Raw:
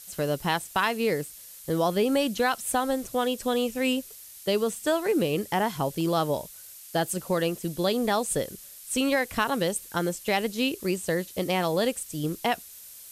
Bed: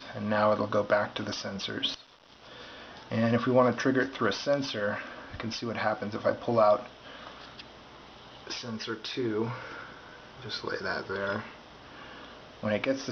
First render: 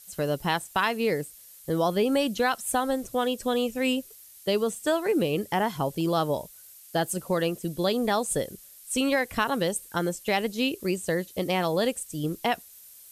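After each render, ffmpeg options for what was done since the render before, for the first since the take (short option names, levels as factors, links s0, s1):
-af "afftdn=nr=6:nf=-46"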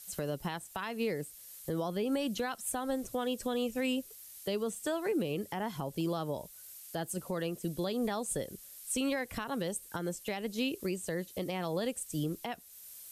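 -filter_complex "[0:a]acrossover=split=310[s0][s1];[s1]acompressor=threshold=0.0398:ratio=2[s2];[s0][s2]amix=inputs=2:normalize=0,alimiter=level_in=1.06:limit=0.0631:level=0:latency=1:release=413,volume=0.944"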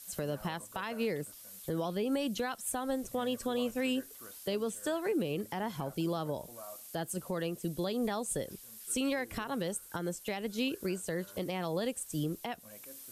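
-filter_complex "[1:a]volume=0.0501[s0];[0:a][s0]amix=inputs=2:normalize=0"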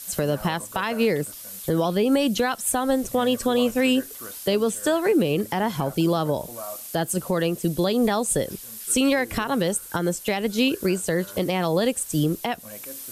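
-af "volume=3.98"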